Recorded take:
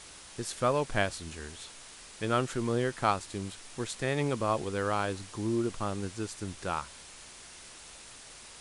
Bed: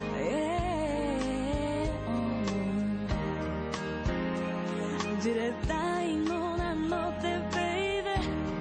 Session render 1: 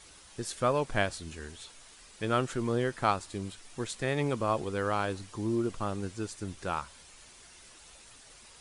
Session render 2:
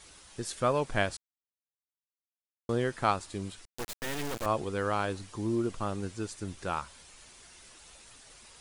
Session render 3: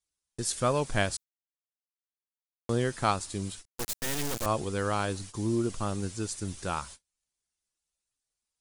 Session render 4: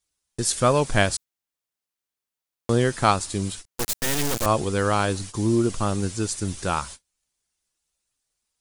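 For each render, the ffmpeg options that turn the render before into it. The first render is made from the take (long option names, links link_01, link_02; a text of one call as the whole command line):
ffmpeg -i in.wav -af "afftdn=noise_reduction=7:noise_floor=-50" out.wav
ffmpeg -i in.wav -filter_complex "[0:a]asettb=1/sr,asplit=3[link_01][link_02][link_03];[link_01]atrim=end=3.654[link_04];[link_02]atrim=start=3.65:end=4.46,asetpts=PTS-STARTPTS,afade=type=in:duration=0.004:curve=qsin,afade=type=out:start_time=0.806:duration=0.004:curve=qsin,acrusher=bits=3:dc=4:mix=0:aa=0.000001[link_05];[link_03]atrim=start=4.456[link_06];[link_04][link_05]acrossfade=duration=0.004:curve1=hsin:curve2=qsin[link_07];[link_07][link_06]acrossfade=duration=0.004:curve1=qsin:curve2=hsin,asplit=3[link_08][link_09][link_10];[link_08]atrim=end=1.17,asetpts=PTS-STARTPTS,afade=type=out:start_time=1.166:duration=0.004:curve=hsin[link_11];[link_09]atrim=start=1.17:end=2.69,asetpts=PTS-STARTPTS,volume=0[link_12];[link_10]atrim=start=2.69,asetpts=PTS-STARTPTS,afade=type=in:duration=0.004:curve=hsin[link_13];[link_11][link_12][link_13]concat=n=3:v=0:a=1" out.wav
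ffmpeg -i in.wav -af "agate=range=-40dB:threshold=-47dB:ratio=16:detection=peak,bass=frequency=250:gain=4,treble=frequency=4000:gain=9" out.wav
ffmpeg -i in.wav -af "volume=7.5dB" out.wav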